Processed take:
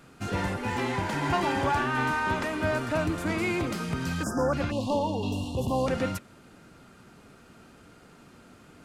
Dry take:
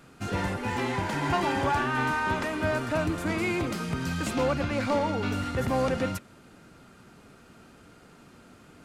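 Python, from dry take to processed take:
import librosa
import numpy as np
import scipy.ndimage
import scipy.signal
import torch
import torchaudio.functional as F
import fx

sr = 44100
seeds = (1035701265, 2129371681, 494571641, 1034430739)

y = fx.spec_erase(x, sr, start_s=4.23, length_s=0.3, low_hz=1800.0, high_hz=4800.0)
y = fx.cheby1_bandstop(y, sr, low_hz=1100.0, high_hz=2700.0, order=5, at=(4.7, 5.86), fade=0.02)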